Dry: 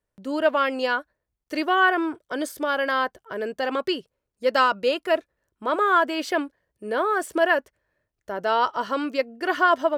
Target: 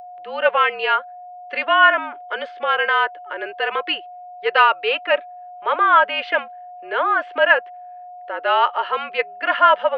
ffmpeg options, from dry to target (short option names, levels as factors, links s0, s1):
-af "highpass=f=530:t=q:w=0.5412,highpass=f=530:t=q:w=1.307,lowpass=f=2900:t=q:w=0.5176,lowpass=f=2900:t=q:w=0.7071,lowpass=f=2900:t=q:w=1.932,afreqshift=-54,aeval=exprs='val(0)+0.0112*sin(2*PI*720*n/s)':c=same,crystalizer=i=7:c=0,volume=1.26"